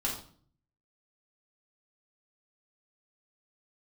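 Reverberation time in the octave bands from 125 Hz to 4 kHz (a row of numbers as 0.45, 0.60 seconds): 0.85, 0.70, 0.50, 0.45, 0.40, 0.40 seconds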